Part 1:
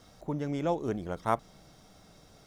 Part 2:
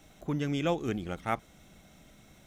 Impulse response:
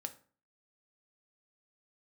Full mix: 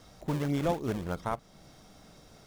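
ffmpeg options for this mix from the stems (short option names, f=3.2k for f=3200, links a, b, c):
-filter_complex "[0:a]volume=1.5dB[a];[1:a]acrusher=samples=37:mix=1:aa=0.000001:lfo=1:lforange=59.2:lforate=3.3,volume=-7dB[b];[a][b]amix=inputs=2:normalize=0,alimiter=limit=-19dB:level=0:latency=1:release=339"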